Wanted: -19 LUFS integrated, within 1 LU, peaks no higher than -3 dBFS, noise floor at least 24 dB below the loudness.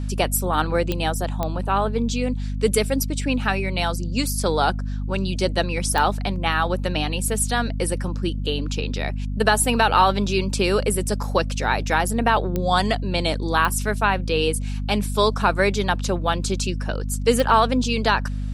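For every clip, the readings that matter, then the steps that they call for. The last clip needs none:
clicks found 6; hum 50 Hz; highest harmonic 250 Hz; hum level -24 dBFS; loudness -22.0 LUFS; peak level -2.5 dBFS; loudness target -19.0 LUFS
-> de-click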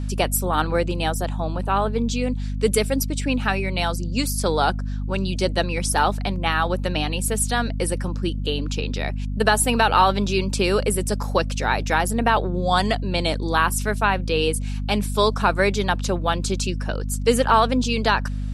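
clicks found 0; hum 50 Hz; highest harmonic 250 Hz; hum level -24 dBFS
-> de-hum 50 Hz, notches 5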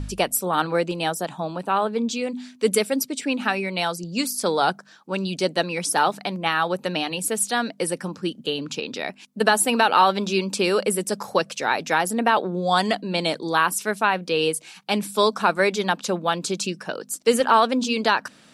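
hum not found; loudness -23.0 LUFS; peak level -3.0 dBFS; loudness target -19.0 LUFS
-> trim +4 dB; peak limiter -3 dBFS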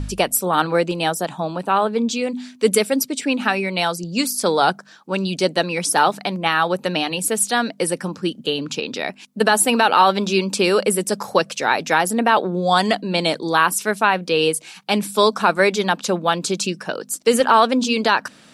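loudness -19.0 LUFS; peak level -3.0 dBFS; noise floor -47 dBFS

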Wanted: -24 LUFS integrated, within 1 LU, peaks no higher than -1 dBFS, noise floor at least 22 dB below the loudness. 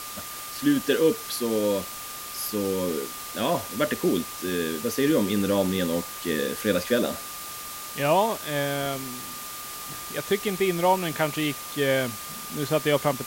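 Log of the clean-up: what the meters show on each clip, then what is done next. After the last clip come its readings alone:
steady tone 1.2 kHz; tone level -41 dBFS; noise floor -37 dBFS; noise floor target -49 dBFS; loudness -26.5 LUFS; peak level -9.0 dBFS; loudness target -24.0 LUFS
-> band-stop 1.2 kHz, Q 30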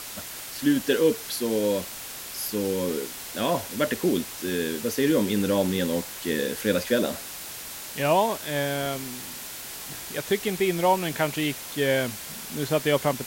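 steady tone not found; noise floor -38 dBFS; noise floor target -49 dBFS
-> noise reduction 11 dB, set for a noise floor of -38 dBFS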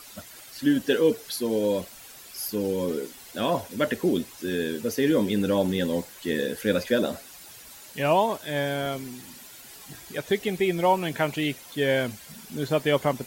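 noise floor -46 dBFS; noise floor target -48 dBFS
-> noise reduction 6 dB, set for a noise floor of -46 dBFS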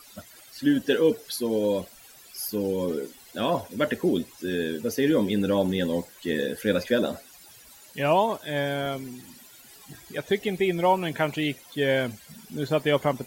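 noise floor -51 dBFS; loudness -26.5 LUFS; peak level -9.5 dBFS; loudness target -24.0 LUFS
-> trim +2.5 dB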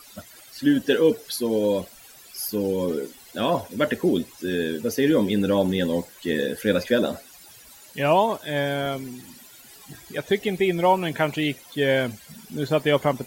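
loudness -24.0 LUFS; peak level -7.0 dBFS; noise floor -48 dBFS

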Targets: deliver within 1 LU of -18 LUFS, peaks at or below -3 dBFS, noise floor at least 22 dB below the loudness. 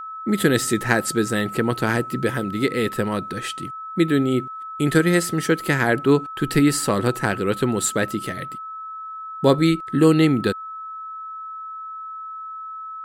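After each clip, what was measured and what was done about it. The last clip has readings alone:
steady tone 1.3 kHz; tone level -31 dBFS; loudness -21.0 LUFS; peak level -2.5 dBFS; loudness target -18.0 LUFS
-> band-stop 1.3 kHz, Q 30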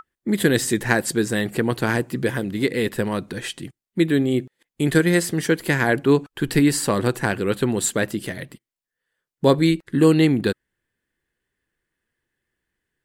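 steady tone not found; loudness -21.0 LUFS; peak level -3.5 dBFS; loudness target -18.0 LUFS
-> trim +3 dB; peak limiter -3 dBFS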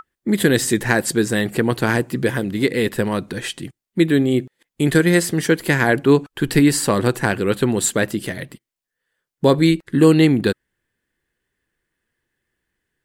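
loudness -18.0 LUFS; peak level -3.0 dBFS; noise floor -84 dBFS

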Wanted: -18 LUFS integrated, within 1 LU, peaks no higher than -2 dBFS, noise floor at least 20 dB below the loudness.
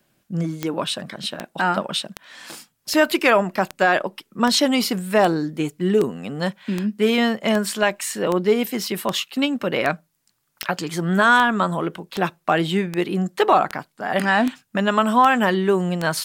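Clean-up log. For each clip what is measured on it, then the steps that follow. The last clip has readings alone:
clicks found 21; loudness -21.0 LUFS; peak level -4.5 dBFS; loudness target -18.0 LUFS
-> de-click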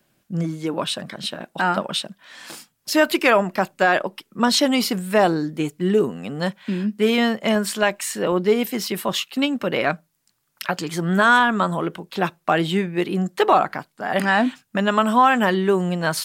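clicks found 0; loudness -21.0 LUFS; peak level -5.5 dBFS; loudness target -18.0 LUFS
-> trim +3 dB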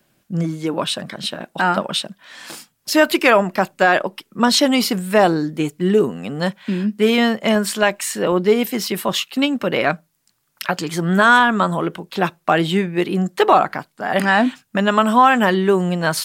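loudness -18.0 LUFS; peak level -2.5 dBFS; noise floor -66 dBFS

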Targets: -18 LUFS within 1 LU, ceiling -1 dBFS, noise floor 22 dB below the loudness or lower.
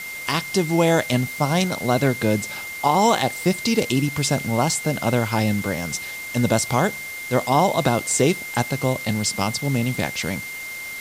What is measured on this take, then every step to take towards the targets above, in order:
steady tone 2.1 kHz; tone level -31 dBFS; noise floor -33 dBFS; noise floor target -44 dBFS; loudness -21.5 LUFS; peak level -5.5 dBFS; loudness target -18.0 LUFS
-> band-stop 2.1 kHz, Q 30; noise reduction 11 dB, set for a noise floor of -33 dBFS; trim +3.5 dB

